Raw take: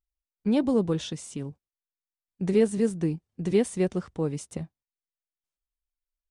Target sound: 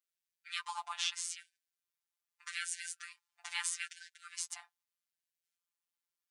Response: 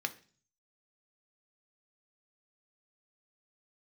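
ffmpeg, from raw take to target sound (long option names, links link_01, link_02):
-filter_complex "[0:a]asplit=2[link_01][link_02];[link_02]asetrate=35002,aresample=44100,atempo=1.25992,volume=-5dB[link_03];[link_01][link_03]amix=inputs=2:normalize=0,afftfilt=real='hypot(re,im)*cos(PI*b)':imag='0':win_size=1024:overlap=0.75,afftfilt=real='re*gte(b*sr/1024,690*pow(1500/690,0.5+0.5*sin(2*PI*0.8*pts/sr)))':imag='im*gte(b*sr/1024,690*pow(1500/690,0.5+0.5*sin(2*PI*0.8*pts/sr)))':win_size=1024:overlap=0.75,volume=5dB"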